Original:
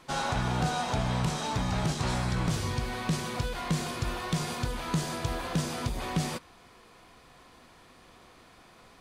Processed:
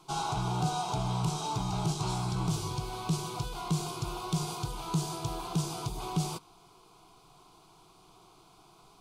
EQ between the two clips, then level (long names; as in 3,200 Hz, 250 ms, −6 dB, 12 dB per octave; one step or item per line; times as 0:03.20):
phaser with its sweep stopped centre 360 Hz, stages 8
0.0 dB